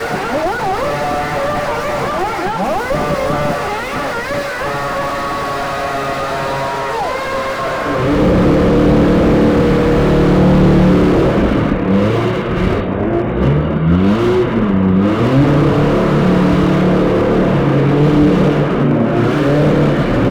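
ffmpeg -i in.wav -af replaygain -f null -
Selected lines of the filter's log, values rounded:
track_gain = -4.4 dB
track_peak = 0.543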